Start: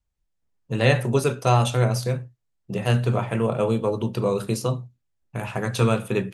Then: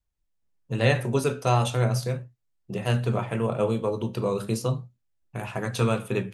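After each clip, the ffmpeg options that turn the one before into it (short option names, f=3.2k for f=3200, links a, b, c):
-af "flanger=delay=2.7:depth=8.9:regen=81:speed=0.37:shape=sinusoidal,volume=1.5dB"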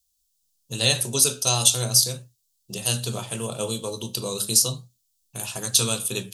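-af "aexciter=amount=15.9:drive=4:freq=3.2k,volume=-5dB"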